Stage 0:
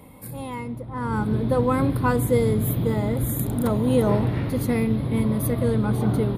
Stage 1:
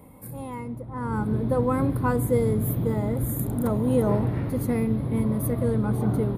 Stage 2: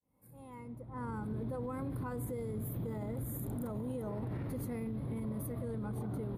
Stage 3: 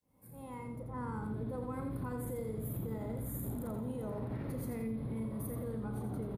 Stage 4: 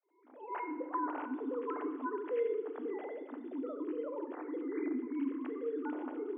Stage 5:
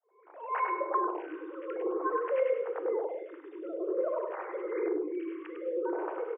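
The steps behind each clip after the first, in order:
parametric band 3,600 Hz −9 dB 1.6 octaves; level −2 dB
fade in at the beginning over 1.75 s; downward compressor, threshold −24 dBFS, peak gain reduction 8 dB; brickwall limiter −27 dBFS, peak gain reduction 10.5 dB; level −4.5 dB
double-tracking delay 36 ms −12 dB; repeating echo 85 ms, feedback 34%, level −5.5 dB; downward compressor 2 to 1, threshold −44 dBFS, peak gain reduction 7.5 dB; level +4 dB
three sine waves on the formant tracks; Chebyshev high-pass with heavy ripple 250 Hz, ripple 3 dB; feedback delay network reverb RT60 1.3 s, low-frequency decay 1.45×, high-frequency decay 0.85×, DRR 8.5 dB; level +1.5 dB
repeating echo 101 ms, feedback 27%, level −4.5 dB; single-sideband voice off tune +54 Hz 330–2,900 Hz; phaser with staggered stages 0.51 Hz; level +8.5 dB

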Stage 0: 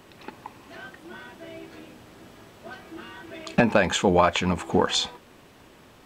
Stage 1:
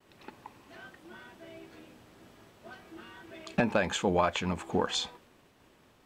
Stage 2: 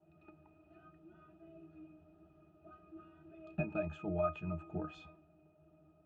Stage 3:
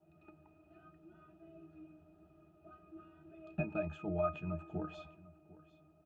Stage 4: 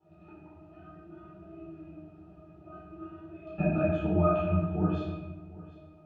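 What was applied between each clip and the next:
downward expander −48 dBFS; level −7.5 dB
noise in a band 140–900 Hz −60 dBFS; resonances in every octave D#, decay 0.16 s; level +2 dB
single-tap delay 750 ms −19.5 dB
high-frequency loss of the air 98 metres; rectangular room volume 440 cubic metres, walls mixed, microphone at 4.2 metres

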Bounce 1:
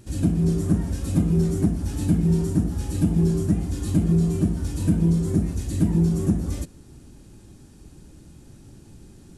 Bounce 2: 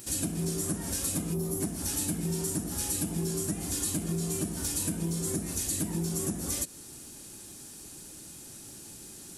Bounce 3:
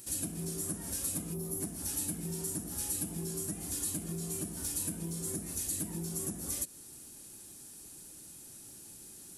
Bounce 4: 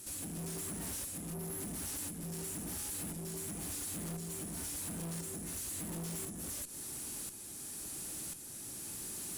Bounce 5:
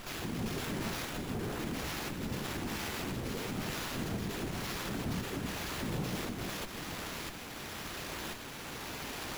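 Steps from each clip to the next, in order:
RIAA equalisation recording; gain on a spectral selection 0:01.34–0:01.61, 1,300–9,800 Hz −10 dB; downward compressor, threshold −31 dBFS, peak gain reduction 9.5 dB; level +3 dB
parametric band 11,000 Hz +6.5 dB 0.64 octaves; level −7.5 dB
downward compressor, threshold −37 dBFS, peak gain reduction 7 dB; shaped tremolo saw up 0.96 Hz, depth 75%; tube saturation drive 53 dB, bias 0.35; level +14 dB
random phases in short frames; echo with a time of its own for lows and highs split 320 Hz, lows 431 ms, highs 164 ms, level −12 dB; windowed peak hold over 5 samples; level +5.5 dB

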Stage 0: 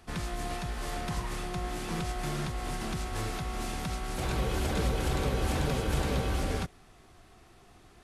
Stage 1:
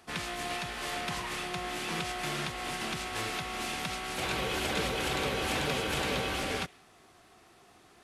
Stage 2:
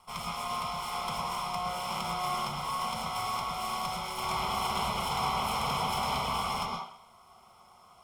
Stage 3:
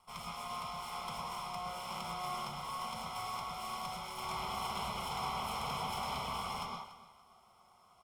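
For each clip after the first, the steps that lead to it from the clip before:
high-pass filter 300 Hz 6 dB per octave; dynamic equaliser 2,700 Hz, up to +7 dB, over −55 dBFS, Q 1; level +1 dB
lower of the sound and its delayed copy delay 0.93 ms; phaser with its sweep stopped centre 740 Hz, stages 4; convolution reverb RT60 0.60 s, pre-delay 104 ms, DRR 0.5 dB
repeating echo 287 ms, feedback 27%, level −16 dB; level −7.5 dB

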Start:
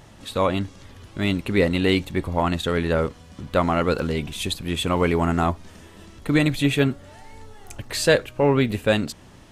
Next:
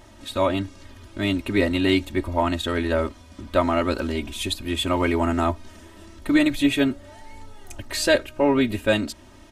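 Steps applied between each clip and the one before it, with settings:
comb filter 3.2 ms, depth 86%
level −2.5 dB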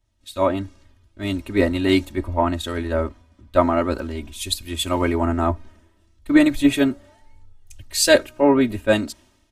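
dynamic equaliser 3,000 Hz, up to −5 dB, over −38 dBFS, Q 1.1
multiband upward and downward expander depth 100%
level +1.5 dB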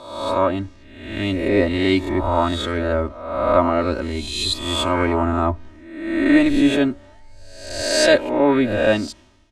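peak hold with a rise ahead of every peak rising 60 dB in 0.87 s
in parallel at +2 dB: downward compressor, threshold −22 dBFS, peak gain reduction 14.5 dB
on the sum: high-frequency loss of the air 68 metres
level −4 dB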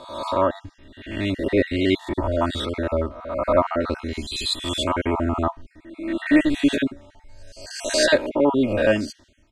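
time-frequency cells dropped at random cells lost 35%
level −1.5 dB

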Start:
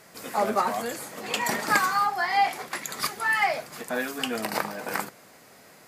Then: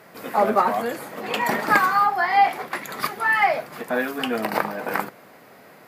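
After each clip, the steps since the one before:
high-pass filter 130 Hz 6 dB per octave
parametric band 7,300 Hz −14.5 dB 1.8 octaves
level +6.5 dB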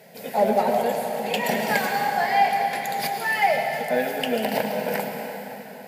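phaser with its sweep stopped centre 320 Hz, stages 6
in parallel at −11.5 dB: gain into a clipping stage and back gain 21 dB
on the sum: convolution reverb RT60 3.9 s, pre-delay 93 ms, DRR 3 dB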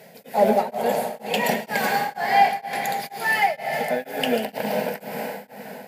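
tremolo along a rectified sine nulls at 2.1 Hz
level +3 dB

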